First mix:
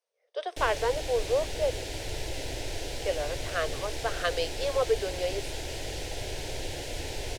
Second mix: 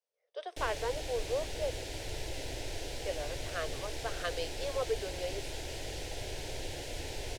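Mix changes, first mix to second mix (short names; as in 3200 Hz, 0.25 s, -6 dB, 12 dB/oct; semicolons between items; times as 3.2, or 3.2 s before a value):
speech -7.5 dB; background -4.5 dB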